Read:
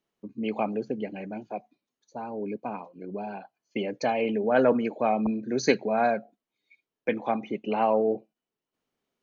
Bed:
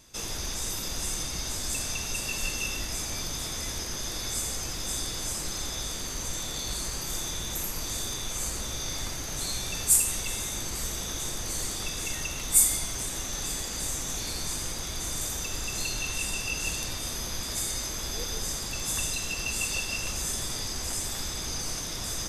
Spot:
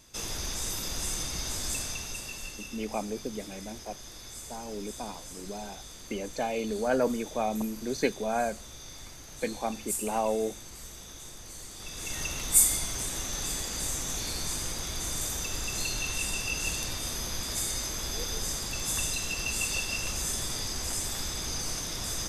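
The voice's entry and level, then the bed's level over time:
2.35 s, −5.0 dB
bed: 0:01.70 −1 dB
0:02.69 −12 dB
0:11.70 −12 dB
0:12.22 −0.5 dB

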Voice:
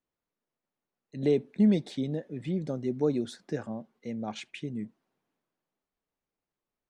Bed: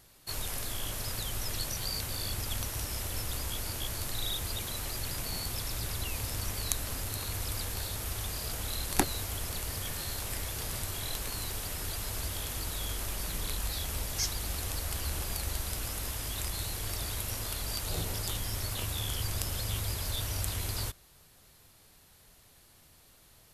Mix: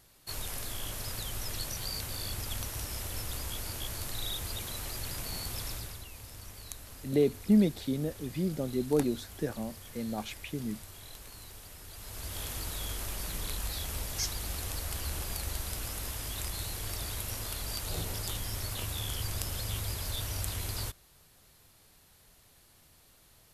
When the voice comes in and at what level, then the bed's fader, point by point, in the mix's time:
5.90 s, −0.5 dB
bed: 0:05.70 −2 dB
0:06.08 −12 dB
0:11.88 −12 dB
0:12.41 −1.5 dB

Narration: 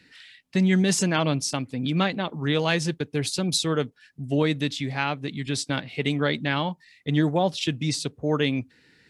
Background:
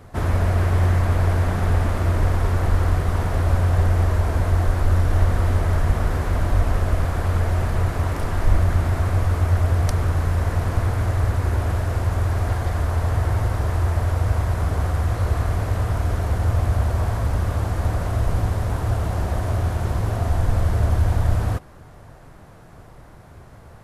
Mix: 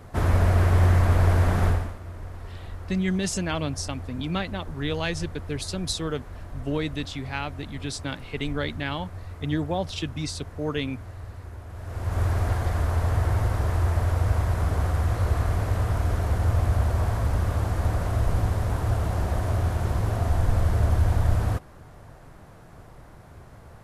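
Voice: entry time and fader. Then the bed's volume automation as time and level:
2.35 s, −5.0 dB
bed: 0:01.67 −0.5 dB
0:01.99 −18.5 dB
0:11.69 −18.5 dB
0:12.21 −2.5 dB

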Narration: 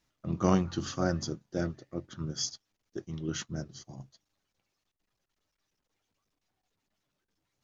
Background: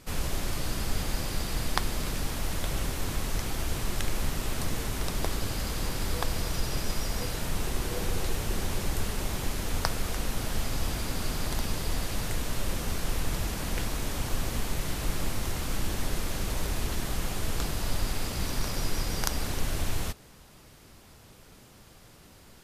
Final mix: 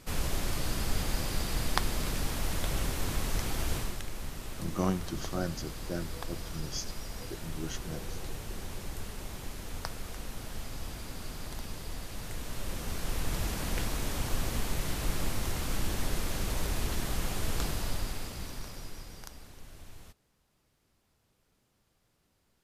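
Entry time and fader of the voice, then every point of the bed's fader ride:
4.35 s, −4.5 dB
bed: 0:03.76 −1 dB
0:04.03 −9.5 dB
0:12.09 −9.5 dB
0:13.46 −1.5 dB
0:17.69 −1.5 dB
0:19.51 −20 dB

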